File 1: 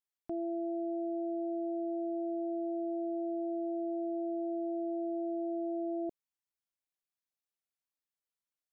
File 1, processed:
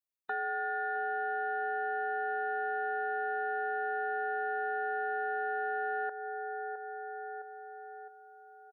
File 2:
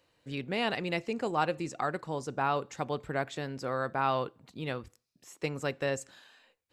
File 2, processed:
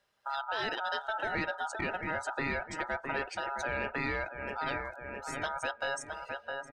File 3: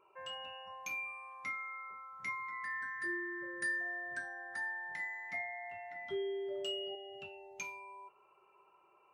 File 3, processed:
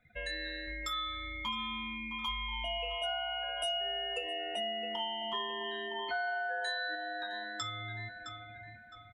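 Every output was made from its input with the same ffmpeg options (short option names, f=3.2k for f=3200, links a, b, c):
-filter_complex "[0:a]highshelf=f=11k:g=6,aeval=exprs='val(0)*sin(2*PI*1100*n/s)':c=same,asplit=2[a][b];[b]adelay=662,lowpass=f=4.2k:p=1,volume=-12dB,asplit=2[c][d];[d]adelay=662,lowpass=f=4.2k:p=1,volume=0.5,asplit=2[e][f];[f]adelay=662,lowpass=f=4.2k:p=1,volume=0.5,asplit=2[g][h];[h]adelay=662,lowpass=f=4.2k:p=1,volume=0.5,asplit=2[i][j];[j]adelay=662,lowpass=f=4.2k:p=1,volume=0.5[k];[c][e][g][i][k]amix=inputs=5:normalize=0[l];[a][l]amix=inputs=2:normalize=0,acompressor=threshold=-53dB:ratio=2,asplit=2[m][n];[n]aeval=exprs='0.0299*sin(PI/2*3.16*val(0)/0.0299)':c=same,volume=-12dB[o];[m][o]amix=inputs=2:normalize=0,afftdn=nr=18:nf=-52,volume=8dB"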